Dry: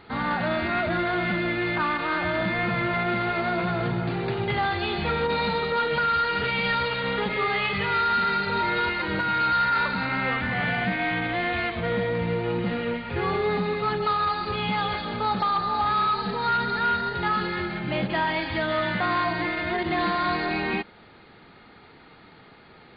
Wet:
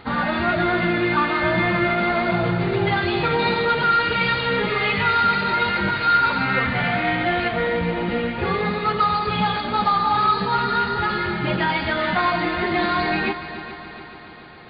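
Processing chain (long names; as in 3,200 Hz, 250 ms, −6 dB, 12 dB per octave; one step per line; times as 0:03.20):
time stretch by phase vocoder 0.64×
echo machine with several playback heads 142 ms, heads second and third, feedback 60%, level −14 dB
level +7.5 dB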